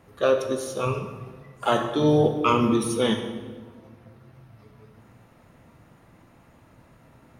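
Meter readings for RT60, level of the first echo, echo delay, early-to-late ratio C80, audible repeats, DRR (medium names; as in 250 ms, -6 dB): 1.4 s, no echo, no echo, 9.0 dB, no echo, 5.0 dB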